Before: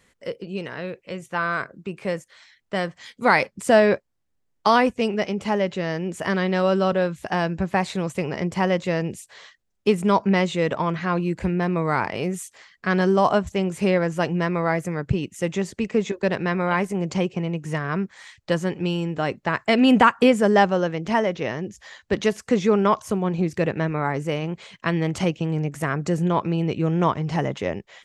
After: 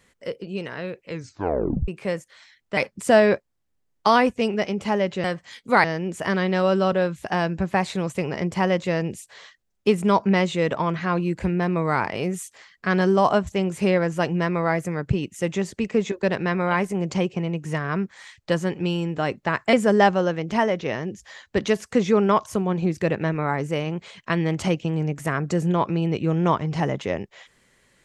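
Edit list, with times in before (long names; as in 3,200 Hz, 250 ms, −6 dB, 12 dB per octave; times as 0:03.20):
0:01.06: tape stop 0.82 s
0:02.77–0:03.37: move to 0:05.84
0:19.73–0:20.29: remove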